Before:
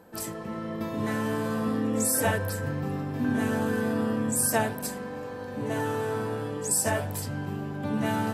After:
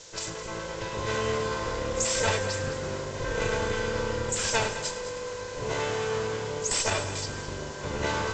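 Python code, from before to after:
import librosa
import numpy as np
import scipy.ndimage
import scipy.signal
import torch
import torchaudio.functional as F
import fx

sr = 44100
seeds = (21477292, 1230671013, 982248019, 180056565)

y = fx.lower_of_two(x, sr, delay_ms=2.0)
y = fx.dmg_noise_colour(y, sr, seeds[0], colour='blue', level_db=-48.0)
y = scipy.signal.sosfilt(scipy.signal.butter(16, 7400.0, 'lowpass', fs=sr, output='sos'), y)
y = fx.high_shelf(y, sr, hz=2700.0, db=10.5)
y = fx.echo_heads(y, sr, ms=105, heads='first and second', feedback_pct=48, wet_db=-14.5)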